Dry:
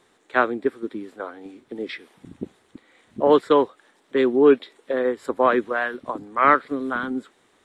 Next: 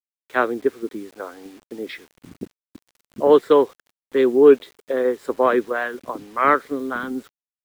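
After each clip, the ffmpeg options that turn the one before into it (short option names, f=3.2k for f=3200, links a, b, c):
-af "adynamicequalizer=threshold=0.0398:dfrequency=430:dqfactor=2.1:tfrequency=430:tqfactor=2.1:attack=5:release=100:ratio=0.375:range=2.5:mode=boostabove:tftype=bell,acrusher=bits=7:mix=0:aa=0.000001,volume=-1dB"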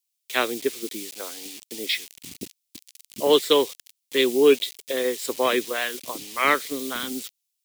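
-af "aexciter=amount=9.1:drive=5:freq=2.2k,volume=-5dB"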